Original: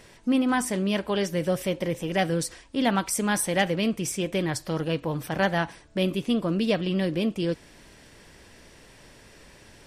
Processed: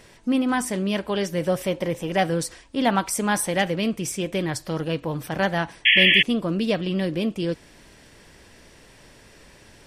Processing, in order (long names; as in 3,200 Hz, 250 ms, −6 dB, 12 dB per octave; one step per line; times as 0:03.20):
0:01.37–0:03.51: dynamic equaliser 880 Hz, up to +4 dB, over −38 dBFS, Q 0.99
0:05.85–0:06.23: sound drawn into the spectrogram noise 1,700–3,400 Hz −17 dBFS
level +1 dB